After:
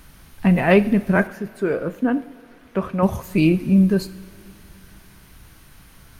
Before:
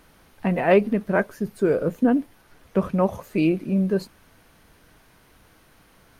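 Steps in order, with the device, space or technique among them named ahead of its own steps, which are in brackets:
smiley-face EQ (low-shelf EQ 180 Hz +8 dB; parametric band 500 Hz −7 dB 1.7 octaves; high-shelf EQ 5,700 Hz +5 dB)
0:01.27–0:03.03: bass and treble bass −13 dB, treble −11 dB
coupled-rooms reverb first 0.55 s, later 3.2 s, from −15 dB, DRR 12.5 dB
level +5 dB

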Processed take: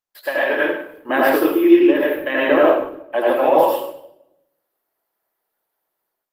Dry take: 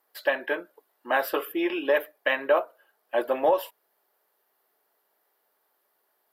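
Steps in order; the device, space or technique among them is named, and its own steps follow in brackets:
0:01.09–0:02.59: low shelf with overshoot 470 Hz +8 dB, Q 1.5
noise gate with hold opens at −50 dBFS
far-field microphone of a smart speaker (convolution reverb RT60 0.75 s, pre-delay 77 ms, DRR −5.5 dB; high-pass filter 81 Hz 24 dB per octave; automatic gain control gain up to 12.5 dB; level −1 dB; Opus 24 kbit/s 48,000 Hz)

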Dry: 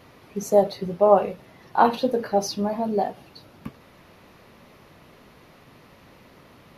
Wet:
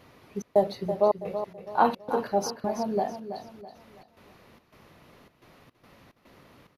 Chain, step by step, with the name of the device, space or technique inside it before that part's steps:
trance gate with a delay (gate pattern "xxx.xxxx.xx.xx." 108 BPM −60 dB; repeating echo 328 ms, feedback 37%, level −10 dB)
level −4 dB

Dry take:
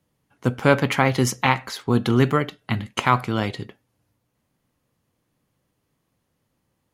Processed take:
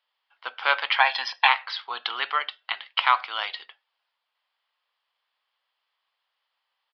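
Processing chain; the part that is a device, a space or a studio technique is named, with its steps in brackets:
0:01.00–0:01.48: comb filter 1.2 ms, depth 96%
musical greeting card (downsampling to 11,025 Hz; high-pass filter 840 Hz 24 dB per octave; parametric band 3,200 Hz +7 dB 0.42 octaves)

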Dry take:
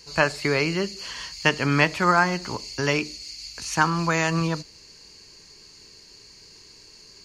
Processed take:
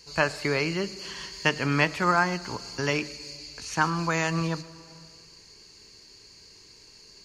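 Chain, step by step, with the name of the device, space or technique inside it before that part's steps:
0:03.37–0:03.84: high-shelf EQ 8,400 Hz −7.5 dB
compressed reverb return (on a send at −6.5 dB: convolution reverb RT60 1.3 s, pre-delay 106 ms + downward compressor, threshold −34 dBFS, peak gain reduction 17 dB)
on the sum: level −3.5 dB

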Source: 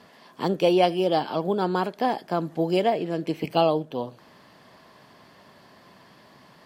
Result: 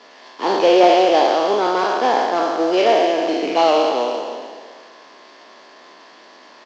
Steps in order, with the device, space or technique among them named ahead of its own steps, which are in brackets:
peak hold with a decay on every bin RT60 1.85 s
early wireless headset (high-pass filter 260 Hz 24 dB per octave; variable-slope delta modulation 32 kbit/s)
high-pass filter 260 Hz 12 dB per octave
single-tap delay 308 ms −13.5 dB
level +5.5 dB

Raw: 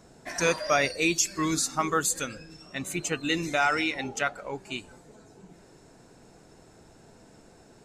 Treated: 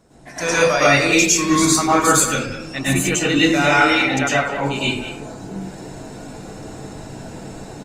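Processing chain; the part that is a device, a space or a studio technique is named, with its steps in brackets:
speakerphone in a meeting room (convolution reverb RT60 0.50 s, pre-delay 98 ms, DRR −7.5 dB; far-end echo of a speakerphone 200 ms, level −11 dB; automatic gain control gain up to 11.5 dB; level −1 dB; Opus 32 kbit/s 48,000 Hz)

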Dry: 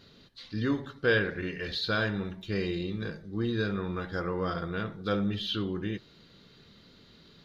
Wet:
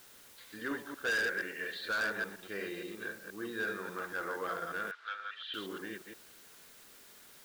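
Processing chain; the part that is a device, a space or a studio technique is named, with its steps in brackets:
delay that plays each chunk backwards 118 ms, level −4 dB
drive-through speaker (band-pass filter 400–3,000 Hz; parametric band 1,600 Hz +8 dB 0.44 octaves; hard clipping −23.5 dBFS, distortion −8 dB; white noise bed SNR 18 dB)
0:04.91–0:05.54: Chebyshev band-pass filter 1,300–3,800 Hz, order 2
level −5.5 dB

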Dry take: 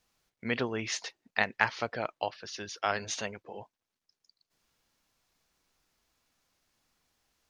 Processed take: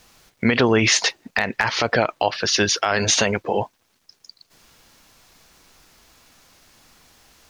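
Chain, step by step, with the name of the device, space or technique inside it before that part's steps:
loud club master (downward compressor 3 to 1, threshold −30 dBFS, peak gain reduction 8.5 dB; hard clipping −16.5 dBFS, distortion −23 dB; boost into a limiter +27.5 dB)
level −5.5 dB

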